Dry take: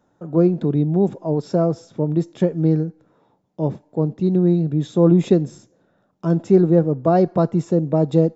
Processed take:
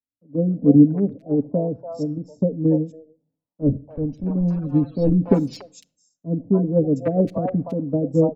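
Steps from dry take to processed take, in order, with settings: 3.61–5.11 s: block-companded coder 3-bit; spectral gate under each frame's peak -30 dB strong; FFT filter 110 Hz 0 dB, 160 Hz -10 dB, 280 Hz +13 dB, 670 Hz -6 dB, 1.4 kHz -17 dB, 2.2 kHz -7 dB, 3.3 kHz -26 dB, 4.7 kHz -14 dB; rotary cabinet horn 1.1 Hz, later 6.7 Hz, at 5.48 s; static phaser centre 850 Hz, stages 4; hard clipper -15.5 dBFS, distortion -30 dB; three bands offset in time lows, mids, highs 290/510 ms, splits 620/2700 Hz; simulated room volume 2600 m³, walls furnished, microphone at 0.34 m; three bands expanded up and down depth 100%; trim +7.5 dB

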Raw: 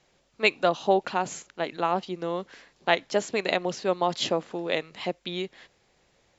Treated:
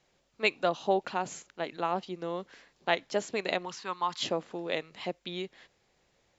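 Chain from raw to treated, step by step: 3.65–4.23 s: resonant low shelf 790 Hz -8 dB, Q 3; trim -5 dB

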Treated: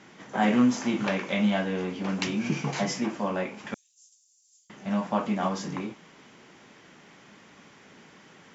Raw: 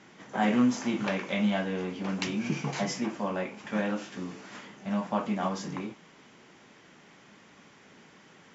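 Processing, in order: 3.74–4.70 s: inverse Chebyshev high-pass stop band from 1.3 kHz, stop band 80 dB; trim +2.5 dB

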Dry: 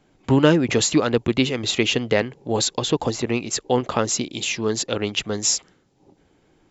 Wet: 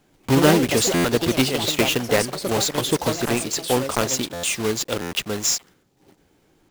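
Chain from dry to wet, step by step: block-companded coder 3-bit; ever faster or slower copies 125 ms, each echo +4 st, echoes 2, each echo -6 dB; buffer glitch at 0.94/4.33/5.01 s, samples 512; trim -1 dB

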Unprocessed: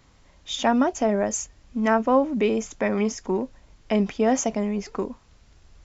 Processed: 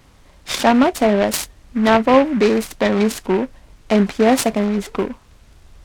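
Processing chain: delay time shaken by noise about 1.4 kHz, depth 0.054 ms; trim +7 dB

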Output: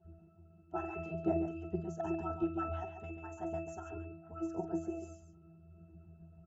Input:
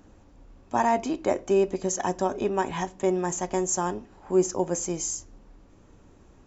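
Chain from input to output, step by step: harmonic-percussive separation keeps percussive; pitch-class resonator E, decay 0.56 s; loudspeakers at several distances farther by 16 m -12 dB, 48 m -8 dB; trim +16 dB

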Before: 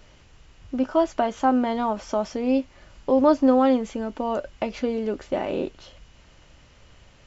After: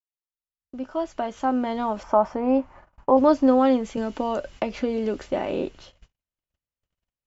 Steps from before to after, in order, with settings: fade-in on the opening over 2.17 s; gate -45 dBFS, range -44 dB; 2.03–3.17 s: FFT filter 470 Hz 0 dB, 940 Hz +12 dB, 3.7 kHz -13 dB; 3.97–5.26 s: three bands compressed up and down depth 70%

